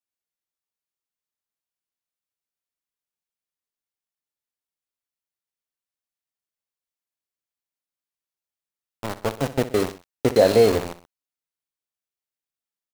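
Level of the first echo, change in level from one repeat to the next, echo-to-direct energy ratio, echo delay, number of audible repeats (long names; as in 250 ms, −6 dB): −14.5 dB, −5.5 dB, −13.5 dB, 63 ms, 2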